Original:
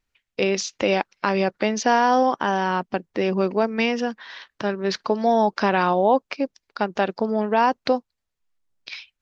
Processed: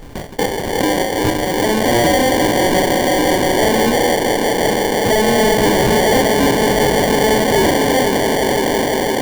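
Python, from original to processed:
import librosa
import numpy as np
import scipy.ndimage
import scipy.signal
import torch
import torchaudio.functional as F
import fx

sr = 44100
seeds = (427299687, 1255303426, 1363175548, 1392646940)

y = fx.comb(x, sr, ms=4.9, depth=0.92, at=(5.0, 5.88))
y = fx.echo_swell(y, sr, ms=169, loudest=5, wet_db=-10.0)
y = fx.rev_fdn(y, sr, rt60_s=0.56, lf_ratio=1.0, hf_ratio=0.3, size_ms=20.0, drr_db=-5.0)
y = fx.sample_hold(y, sr, seeds[0], rate_hz=1300.0, jitter_pct=0)
y = np.clip(y, -10.0 ** (-10.5 / 20.0), 10.0 ** (-10.5 / 20.0))
y = fx.pre_swell(y, sr, db_per_s=37.0)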